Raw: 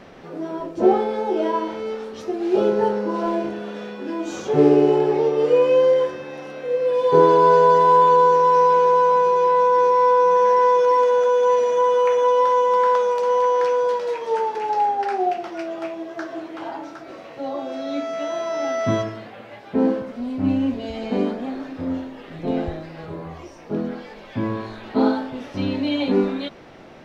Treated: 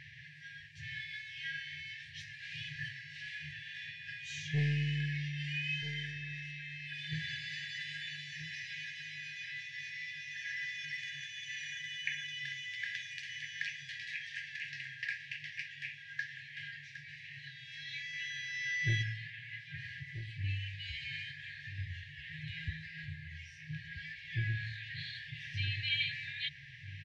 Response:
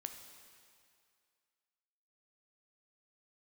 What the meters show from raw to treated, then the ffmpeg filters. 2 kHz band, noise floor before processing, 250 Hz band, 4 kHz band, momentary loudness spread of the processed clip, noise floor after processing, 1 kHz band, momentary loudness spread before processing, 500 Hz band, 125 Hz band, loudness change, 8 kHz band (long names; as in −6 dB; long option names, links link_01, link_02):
−2.5 dB, −41 dBFS, −25.5 dB, −2.5 dB, 11 LU, −52 dBFS, below −40 dB, 17 LU, below −40 dB, −5.0 dB, −20.5 dB, can't be measured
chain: -filter_complex "[0:a]highpass=120,aemphasis=mode=production:type=50kf,afftfilt=real='re*(1-between(b*sr/4096,160,1600))':imag='im*(1-between(b*sr/4096,160,1600))':win_size=4096:overlap=0.75,lowpass=2300,equalizer=frequency=200:width=5.3:gain=5.5,acrossover=split=640[link_01][link_02];[link_01]aeval=exprs='(tanh(28.2*val(0)+0.15)-tanh(0.15))/28.2':channel_layout=same[link_03];[link_03][link_02]amix=inputs=2:normalize=0,asplit=2[link_04][link_05];[link_05]adelay=1283,volume=-11dB,highshelf=frequency=4000:gain=-28.9[link_06];[link_04][link_06]amix=inputs=2:normalize=0,volume=2dB"